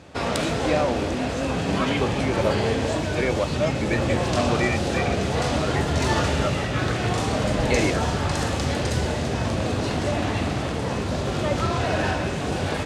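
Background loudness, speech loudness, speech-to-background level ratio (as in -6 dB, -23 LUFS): -24.5 LUFS, -29.0 LUFS, -4.5 dB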